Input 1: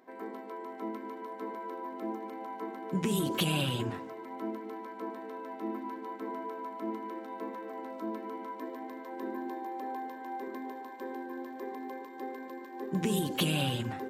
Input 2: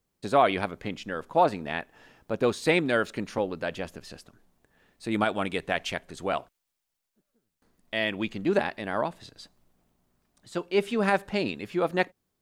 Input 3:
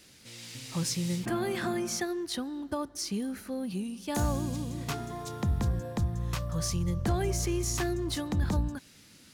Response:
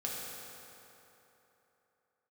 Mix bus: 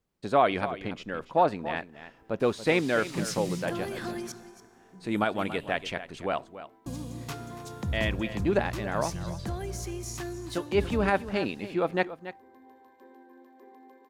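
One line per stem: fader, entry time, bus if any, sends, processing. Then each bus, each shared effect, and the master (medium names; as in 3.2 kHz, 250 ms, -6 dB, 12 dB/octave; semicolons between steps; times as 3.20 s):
-14.5 dB, 2.00 s, send -15.5 dB, no echo send, auto duck -10 dB, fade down 0.90 s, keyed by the second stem
-1.0 dB, 0.00 s, no send, echo send -13.5 dB, treble shelf 5.3 kHz -8 dB
-6.0 dB, 2.40 s, muted 4.32–6.86 s, send -13 dB, echo send -13.5 dB, gain riding 2 s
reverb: on, RT60 3.3 s, pre-delay 3 ms
echo: delay 283 ms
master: none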